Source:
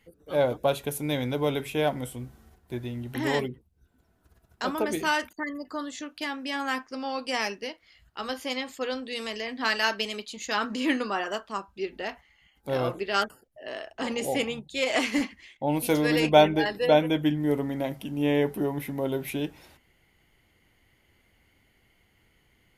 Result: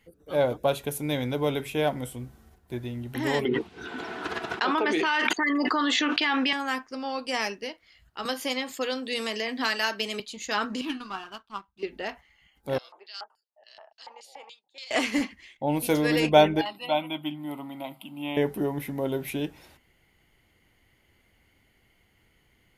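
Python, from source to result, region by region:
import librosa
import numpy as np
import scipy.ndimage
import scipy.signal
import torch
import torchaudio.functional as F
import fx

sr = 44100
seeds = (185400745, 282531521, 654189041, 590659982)

y = fx.chain(x, sr, fx.cheby1_bandpass(low_hz=420.0, high_hz=3300.0, order=2),
    fx.peak_eq(hz=570.0, db=-12.0, octaves=0.4),
    fx.env_flatten(amount_pct=100), at=(3.45, 6.53))
y = fx.chain(y, sr, fx.highpass(hz=96.0, slope=24),
    fx.high_shelf(hz=11000.0, db=7.0),
    fx.band_squash(depth_pct=70), at=(8.25, 10.2))
y = fx.chain(y, sr, fx.fixed_phaser(hz=2000.0, stages=6),
    fx.power_curve(exponent=1.4), at=(10.81, 11.83))
y = fx.chain(y, sr, fx.highpass(hz=470.0, slope=12),
    fx.filter_lfo_bandpass(shape='square', hz=3.5, low_hz=900.0, high_hz=4500.0, q=5.6),
    fx.band_squash(depth_pct=40), at=(12.78, 14.91))
y = fx.chain(y, sr, fx.highpass(hz=280.0, slope=12),
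    fx.fixed_phaser(hz=1700.0, stages=6), at=(16.61, 18.37))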